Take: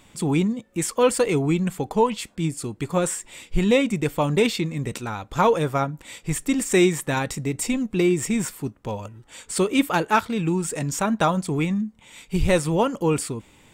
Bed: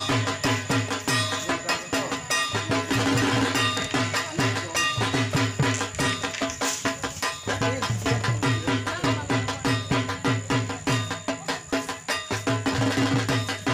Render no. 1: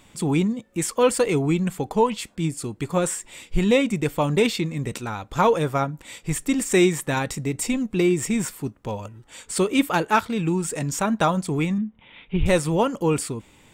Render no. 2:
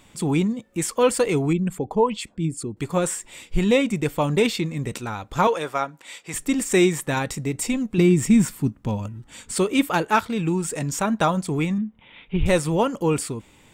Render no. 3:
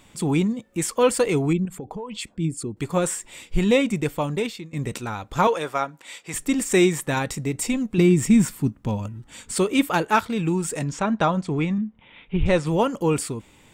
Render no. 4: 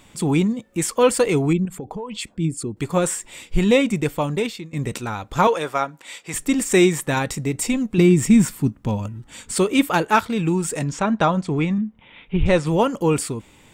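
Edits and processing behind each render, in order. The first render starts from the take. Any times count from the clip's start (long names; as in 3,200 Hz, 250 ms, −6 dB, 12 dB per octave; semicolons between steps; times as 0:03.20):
0:11.78–0:12.46: Butterworth low-pass 3,600 Hz 72 dB per octave
0:01.53–0:02.77: spectral envelope exaggerated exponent 1.5; 0:05.47–0:06.34: meter weighting curve A; 0:07.98–0:09.55: low shelf with overshoot 320 Hz +6.5 dB, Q 1.5
0:01.65–0:02.15: downward compressor 12 to 1, threshold −29 dBFS; 0:03.97–0:04.73: fade out, to −18 dB; 0:10.84–0:12.67: high-frequency loss of the air 100 metres
level +2.5 dB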